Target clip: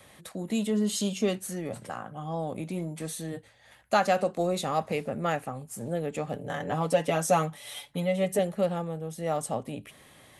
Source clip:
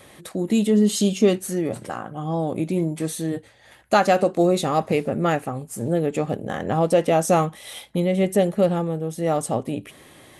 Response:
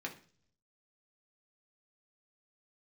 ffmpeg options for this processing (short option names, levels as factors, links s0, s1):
-filter_complex "[0:a]asettb=1/sr,asplit=3[s0][s1][s2];[s0]atrim=end=6.344[s3];[s1]atrim=start=6.34:end=8.39,asetpts=PTS-STARTPTS,afade=t=in:d=0.004:c=qsin,afade=t=out:st=2.046:d=0.004:c=qsin,aecho=1:1:6.9:0.78,atrim=end_sample=90405[s4];[s2]atrim=start=8.386[s5];[s3][s4]acrossfade=d=0.004:c1=hsin:c2=qsin[s6];[s6][s5]acrossfade=d=0.004:c1=qsin:c2=hsin,acrossover=split=180|3000[s7][s8][s9];[s7]asoftclip=type=tanh:threshold=0.0168[s10];[s8]equalizer=f=340:t=o:w=0.66:g=-8[s11];[s10][s11][s9]amix=inputs=3:normalize=0,volume=0.531"